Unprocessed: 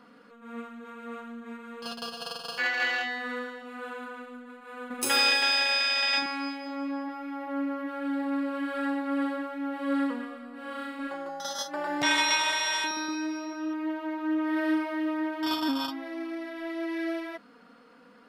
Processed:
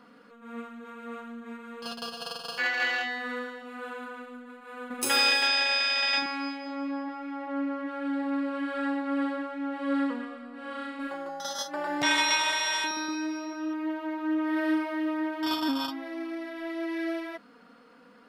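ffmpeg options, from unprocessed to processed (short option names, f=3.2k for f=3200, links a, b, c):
-filter_complex "[0:a]asettb=1/sr,asplit=3[a][b][c];[a]atrim=end=5.474[d];[b]atrim=start=5.47:end=11,asetpts=PTS-STARTPTS,afade=t=in:d=0.004:c=qsin,afade=t=out:st=5.526:d=0.004:c=qsin,lowpass=7.8k[e];[c]atrim=start=10.996[f];[d][e]acrossfade=d=0.004:c1=hsin:c2=qsin[g];[g][f]acrossfade=d=0.004:c1=qsin:c2=hsin"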